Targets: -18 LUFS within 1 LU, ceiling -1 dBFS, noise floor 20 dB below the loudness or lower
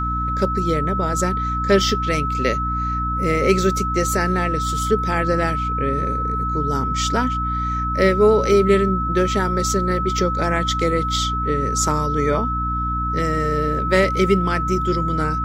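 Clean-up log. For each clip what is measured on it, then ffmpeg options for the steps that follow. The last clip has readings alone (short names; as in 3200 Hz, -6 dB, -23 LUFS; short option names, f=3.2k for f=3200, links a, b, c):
hum 60 Hz; harmonics up to 300 Hz; hum level -23 dBFS; steady tone 1300 Hz; tone level -22 dBFS; loudness -19.5 LUFS; peak -2.5 dBFS; loudness target -18.0 LUFS
-> -af "bandreject=f=60:t=h:w=6,bandreject=f=120:t=h:w=6,bandreject=f=180:t=h:w=6,bandreject=f=240:t=h:w=6,bandreject=f=300:t=h:w=6"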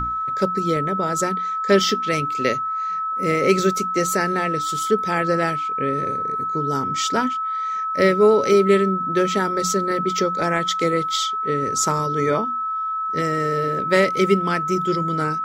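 hum none; steady tone 1300 Hz; tone level -22 dBFS
-> -af "bandreject=f=1.3k:w=30"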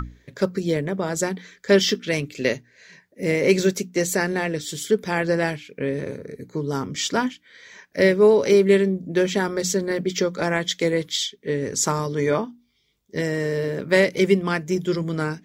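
steady tone none; loudness -22.5 LUFS; peak -4.0 dBFS; loudness target -18.0 LUFS
-> -af "volume=4.5dB,alimiter=limit=-1dB:level=0:latency=1"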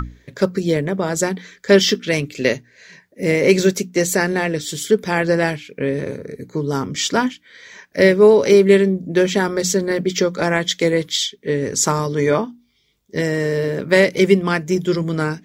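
loudness -18.0 LUFS; peak -1.0 dBFS; noise floor -58 dBFS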